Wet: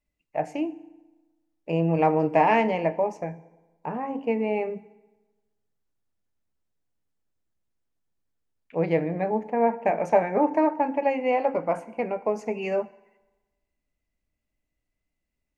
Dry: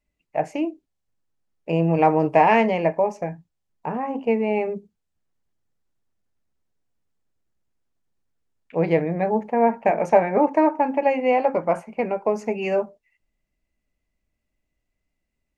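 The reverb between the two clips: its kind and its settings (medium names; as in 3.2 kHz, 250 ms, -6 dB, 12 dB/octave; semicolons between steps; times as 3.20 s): FDN reverb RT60 1.2 s, low-frequency decay 1×, high-frequency decay 0.75×, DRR 15.5 dB; trim -4 dB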